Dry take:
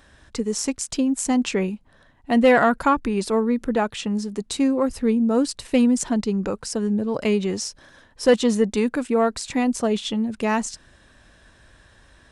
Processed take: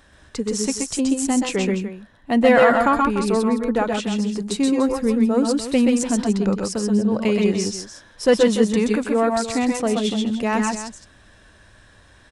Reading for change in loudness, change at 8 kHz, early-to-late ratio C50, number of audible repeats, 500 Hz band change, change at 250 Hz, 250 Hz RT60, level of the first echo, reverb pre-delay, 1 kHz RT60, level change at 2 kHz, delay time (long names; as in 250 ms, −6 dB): +2.0 dB, +2.5 dB, no reverb audible, 2, +2.5 dB, +2.0 dB, no reverb audible, −4.5 dB, no reverb audible, no reverb audible, +2.5 dB, 126 ms